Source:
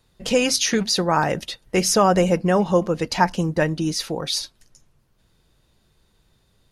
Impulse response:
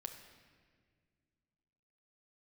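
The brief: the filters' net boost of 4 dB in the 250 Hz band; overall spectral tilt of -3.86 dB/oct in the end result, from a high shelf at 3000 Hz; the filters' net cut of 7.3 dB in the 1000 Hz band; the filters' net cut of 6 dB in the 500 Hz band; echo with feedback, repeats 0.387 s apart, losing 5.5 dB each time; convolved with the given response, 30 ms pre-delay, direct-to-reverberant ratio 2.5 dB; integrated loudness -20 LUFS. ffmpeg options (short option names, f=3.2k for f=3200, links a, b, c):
-filter_complex "[0:a]equalizer=f=250:t=o:g=8.5,equalizer=f=500:t=o:g=-8.5,equalizer=f=1k:t=o:g=-7.5,highshelf=f=3k:g=4,aecho=1:1:387|774|1161|1548|1935|2322|2709:0.531|0.281|0.149|0.079|0.0419|0.0222|0.0118,asplit=2[a][b];[1:a]atrim=start_sample=2205,adelay=30[c];[b][c]afir=irnorm=-1:irlink=0,volume=1dB[d];[a][d]amix=inputs=2:normalize=0,volume=-3dB"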